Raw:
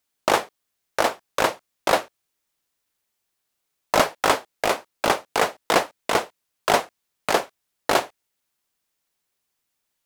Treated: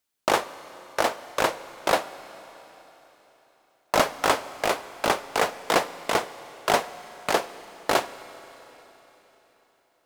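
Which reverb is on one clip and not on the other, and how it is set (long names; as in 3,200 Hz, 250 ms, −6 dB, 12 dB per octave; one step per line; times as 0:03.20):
four-comb reverb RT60 4 s, combs from 32 ms, DRR 14.5 dB
level −2.5 dB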